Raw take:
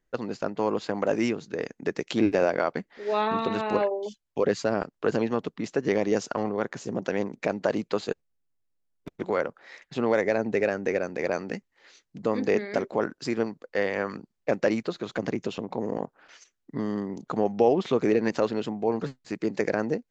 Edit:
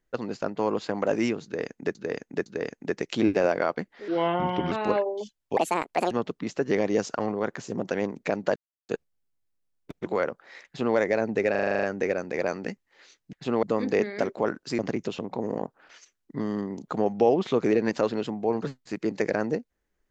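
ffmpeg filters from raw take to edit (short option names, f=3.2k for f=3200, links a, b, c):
-filter_complex "[0:a]asplit=20[a][b][c][d][e][f][g][h][i][j][k][l][m][n][o][p][q][r][s][t];[a]atrim=end=1.952[u];[b]atrim=start=1.438:end=1.952[v];[c]atrim=start=1.438:end=3.064[w];[d]atrim=start=3.06:end=3.57,asetpts=PTS-STARTPTS,asetrate=35280,aresample=44100[x];[e]atrim=start=3.566:end=4.424[y];[f]atrim=start=4.42:end=5.28,asetpts=PTS-STARTPTS,asetrate=70119,aresample=44100[z];[g]atrim=start=5.276:end=7.73,asetpts=PTS-STARTPTS,afade=t=out:st=2.45:d=0.004:c=hsin[aa];[h]atrim=start=7.73:end=8.06,asetpts=PTS-STARTPTS,volume=0[ab];[i]atrim=start=8.06:end=10.722,asetpts=PTS-STARTPTS,afade=t=in:d=0.004:c=hsin[ac];[j]atrim=start=10.678:end=10.722[ad];[k]atrim=start=10.678:end=10.722[ae];[l]atrim=start=10.678:end=10.722[af];[m]atrim=start=10.678:end=10.722[ag];[n]atrim=start=10.678:end=10.722[ah];[o]atrim=start=10.678:end=10.722[ai];[p]atrim=start=10.678:end=10.722[aj];[q]atrim=start=10.678:end=12.182[ak];[r]atrim=start=9.828:end=10.132[al];[s]atrim=start=12.178:end=13.342[am];[t]atrim=start=15.178[an];[u][v]acrossfade=d=0.004:c1=hsin:c2=hsin[ao];[ao][w]acrossfade=d=0.004:c1=hsin:c2=hsin[ap];[ap][x]acrossfade=d=0.004:c1=hsin:c2=hsin[aq];[aq][y]acrossfade=d=0.004:c1=hsin:c2=hsin[ar];[ar][z]acrossfade=d=0.004:c1=hsin:c2=hsin[as];[aa][ab][ac]concat=n=3:v=0:a=1[at];[as][at]acrossfade=d=0.004:c1=hsin:c2=hsin[au];[au][ad]acrossfade=d=0.004:c1=hsin:c2=hsin[av];[av][ae]acrossfade=d=0.004:c1=hsin:c2=hsin[aw];[aw][af]acrossfade=d=0.004:c1=hsin:c2=hsin[ax];[ax][ag]acrossfade=d=0.004:c1=hsin:c2=hsin[ay];[ay][ah]acrossfade=d=0.004:c1=hsin:c2=hsin[az];[az][ai]acrossfade=d=0.004:c1=hsin:c2=hsin[ba];[ba][aj]acrossfade=d=0.004:c1=hsin:c2=hsin[bb];[bb][ak]acrossfade=d=0.004:c1=hsin:c2=hsin[bc];[bc][al]acrossfade=d=0.004:c1=hsin:c2=hsin[bd];[bd][am]acrossfade=d=0.004:c1=hsin:c2=hsin[be];[be][an]acrossfade=d=0.004:c1=hsin:c2=hsin"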